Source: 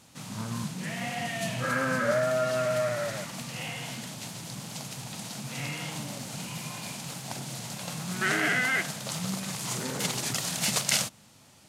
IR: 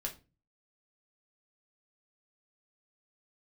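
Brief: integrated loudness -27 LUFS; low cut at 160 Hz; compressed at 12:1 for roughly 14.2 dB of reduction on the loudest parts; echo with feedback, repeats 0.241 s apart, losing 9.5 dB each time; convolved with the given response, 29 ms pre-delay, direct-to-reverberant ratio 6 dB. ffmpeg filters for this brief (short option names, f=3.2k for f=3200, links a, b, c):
-filter_complex "[0:a]highpass=160,acompressor=threshold=-35dB:ratio=12,aecho=1:1:241|482|723|964:0.335|0.111|0.0365|0.012,asplit=2[a][b];[1:a]atrim=start_sample=2205,adelay=29[c];[b][c]afir=irnorm=-1:irlink=0,volume=-6dB[d];[a][d]amix=inputs=2:normalize=0,volume=9.5dB"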